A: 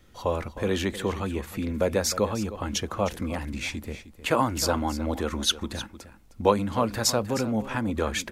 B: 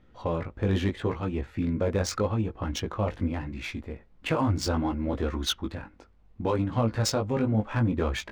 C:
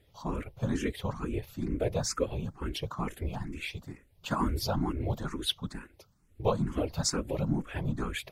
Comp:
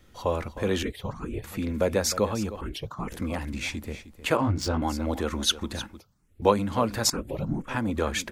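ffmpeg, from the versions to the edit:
-filter_complex "[2:a]asplit=4[s0][s1][s2][s3];[0:a]asplit=6[s4][s5][s6][s7][s8][s9];[s4]atrim=end=0.832[s10];[s0]atrim=start=0.828:end=1.442[s11];[s5]atrim=start=1.438:end=2.612[s12];[s1]atrim=start=2.608:end=3.122[s13];[s6]atrim=start=3.118:end=4.372[s14];[1:a]atrim=start=4.368:end=4.822[s15];[s7]atrim=start=4.818:end=6.002[s16];[s2]atrim=start=5.998:end=6.422[s17];[s8]atrim=start=6.418:end=7.102[s18];[s3]atrim=start=7.098:end=7.682[s19];[s9]atrim=start=7.678[s20];[s10][s11]acrossfade=d=0.004:c1=hsin:c2=hsin[s21];[s21][s12]acrossfade=d=0.004:c1=hsin:c2=hsin[s22];[s22][s13]acrossfade=d=0.004:c1=hsin:c2=hsin[s23];[s23][s14]acrossfade=d=0.004:c1=hsin:c2=hsin[s24];[s24][s15]acrossfade=d=0.004:c1=hsin:c2=hsin[s25];[s25][s16]acrossfade=d=0.004:c1=hsin:c2=hsin[s26];[s26][s17]acrossfade=d=0.004:c1=hsin:c2=hsin[s27];[s27][s18]acrossfade=d=0.004:c1=hsin:c2=hsin[s28];[s28][s19]acrossfade=d=0.004:c1=hsin:c2=hsin[s29];[s29][s20]acrossfade=d=0.004:c1=hsin:c2=hsin"

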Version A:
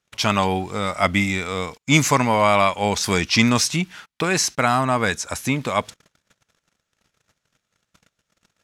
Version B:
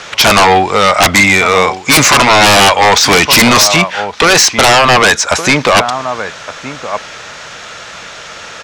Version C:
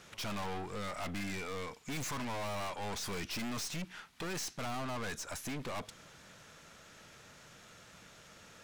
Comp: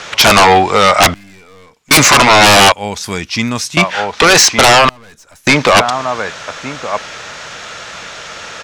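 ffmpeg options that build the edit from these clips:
-filter_complex "[2:a]asplit=2[s0][s1];[1:a]asplit=4[s2][s3][s4][s5];[s2]atrim=end=1.142[s6];[s0]atrim=start=1.138:end=1.912[s7];[s3]atrim=start=1.908:end=2.722[s8];[0:a]atrim=start=2.718:end=3.772[s9];[s4]atrim=start=3.768:end=4.892[s10];[s1]atrim=start=4.888:end=5.472[s11];[s5]atrim=start=5.468[s12];[s6][s7]acrossfade=d=0.004:c1=hsin:c2=hsin[s13];[s13][s8]acrossfade=d=0.004:c1=hsin:c2=hsin[s14];[s14][s9]acrossfade=d=0.004:c1=hsin:c2=hsin[s15];[s15][s10]acrossfade=d=0.004:c1=hsin:c2=hsin[s16];[s16][s11]acrossfade=d=0.004:c1=hsin:c2=hsin[s17];[s17][s12]acrossfade=d=0.004:c1=hsin:c2=hsin"

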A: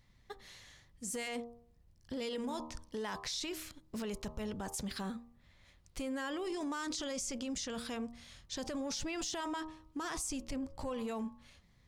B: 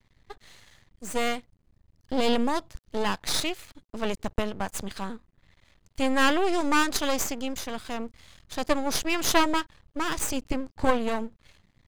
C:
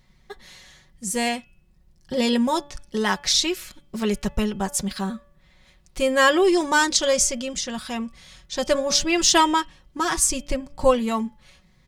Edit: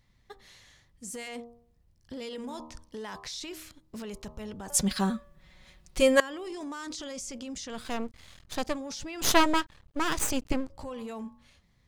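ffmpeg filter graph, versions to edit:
-filter_complex "[1:a]asplit=2[s0][s1];[0:a]asplit=4[s2][s3][s4][s5];[s2]atrim=end=4.702[s6];[2:a]atrim=start=4.698:end=6.202[s7];[s3]atrim=start=6.198:end=7.9[s8];[s0]atrim=start=7.66:end=8.8[s9];[s4]atrim=start=8.56:end=9.222[s10];[s1]atrim=start=9.218:end=10.702[s11];[s5]atrim=start=10.698[s12];[s6][s7]acrossfade=d=0.004:c1=hsin:c2=hsin[s13];[s13][s8]acrossfade=d=0.004:c1=hsin:c2=hsin[s14];[s14][s9]acrossfade=d=0.24:c1=tri:c2=tri[s15];[s15][s10]acrossfade=d=0.24:c1=tri:c2=tri[s16];[s16][s11]acrossfade=d=0.004:c1=hsin:c2=hsin[s17];[s17][s12]acrossfade=d=0.004:c1=hsin:c2=hsin"

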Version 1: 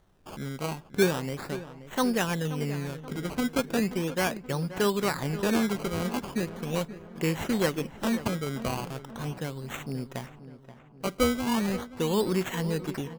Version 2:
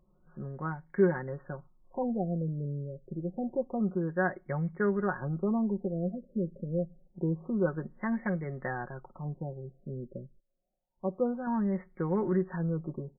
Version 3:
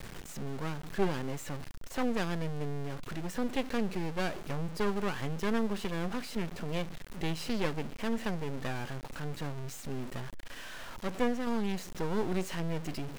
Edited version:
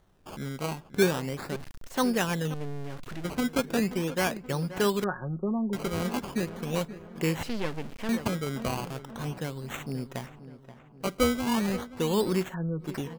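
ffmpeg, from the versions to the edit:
-filter_complex "[2:a]asplit=3[s0][s1][s2];[1:a]asplit=2[s3][s4];[0:a]asplit=6[s5][s6][s7][s8][s9][s10];[s5]atrim=end=1.562[s11];[s0]atrim=start=1.558:end=1.972[s12];[s6]atrim=start=1.968:end=2.542[s13];[s1]atrim=start=2.538:end=3.242[s14];[s7]atrim=start=3.238:end=5.042[s15];[s3]atrim=start=5.038:end=5.732[s16];[s8]atrim=start=5.728:end=7.432[s17];[s2]atrim=start=7.428:end=8.092[s18];[s9]atrim=start=8.088:end=12.55[s19];[s4]atrim=start=12.39:end=12.95[s20];[s10]atrim=start=12.79[s21];[s11][s12]acrossfade=d=0.004:c1=hsin:c2=hsin[s22];[s22][s13]acrossfade=d=0.004:c1=hsin:c2=hsin[s23];[s23][s14]acrossfade=d=0.004:c1=hsin:c2=hsin[s24];[s24][s15]acrossfade=d=0.004:c1=hsin:c2=hsin[s25];[s25][s16]acrossfade=d=0.004:c1=hsin:c2=hsin[s26];[s26][s17]acrossfade=d=0.004:c1=hsin:c2=hsin[s27];[s27][s18]acrossfade=d=0.004:c1=hsin:c2=hsin[s28];[s28][s19]acrossfade=d=0.004:c1=hsin:c2=hsin[s29];[s29][s20]acrossfade=d=0.16:c1=tri:c2=tri[s30];[s30][s21]acrossfade=d=0.16:c1=tri:c2=tri"

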